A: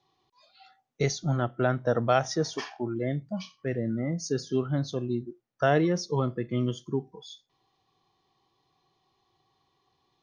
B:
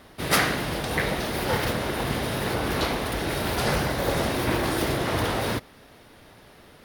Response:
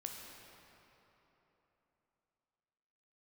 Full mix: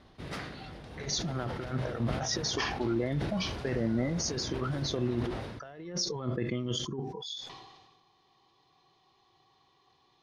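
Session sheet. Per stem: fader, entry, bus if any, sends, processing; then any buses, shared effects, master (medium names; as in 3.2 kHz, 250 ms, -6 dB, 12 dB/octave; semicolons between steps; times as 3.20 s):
+1.5 dB, 0.00 s, no send, bass shelf 430 Hz -5 dB; compressor with a negative ratio -34 dBFS, ratio -0.5
-11.0 dB, 0.00 s, no send, bass shelf 300 Hz +8.5 dB; auto duck -11 dB, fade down 0.45 s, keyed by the first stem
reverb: none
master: low-pass 6.2 kHz 12 dB/octave; decay stretcher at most 41 dB/s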